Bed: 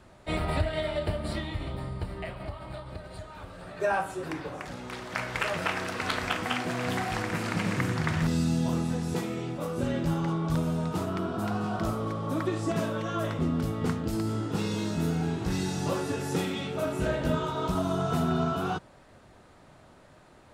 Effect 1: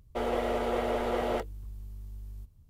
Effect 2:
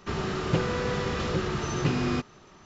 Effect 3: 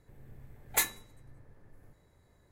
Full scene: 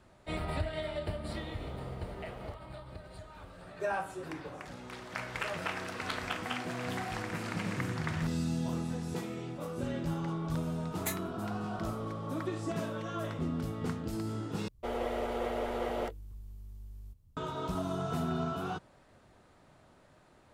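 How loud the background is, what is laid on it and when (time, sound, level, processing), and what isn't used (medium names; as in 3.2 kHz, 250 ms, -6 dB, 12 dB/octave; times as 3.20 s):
bed -6.5 dB
1.14 s: add 1 -17 dB + companding laws mixed up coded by A
10.29 s: add 3 -9 dB
14.68 s: replace with 1 -4.5 dB
not used: 2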